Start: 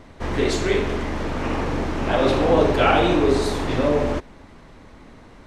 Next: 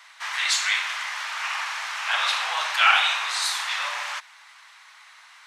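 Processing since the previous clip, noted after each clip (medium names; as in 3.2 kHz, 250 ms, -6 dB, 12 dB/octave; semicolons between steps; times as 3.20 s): Bessel high-pass 1.7 kHz, order 8; trim +8 dB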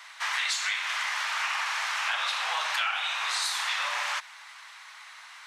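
compression 12:1, threshold -28 dBFS, peak gain reduction 16 dB; trim +2.5 dB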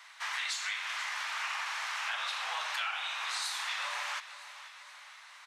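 feedback delay 482 ms, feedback 54%, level -15 dB; trim -6.5 dB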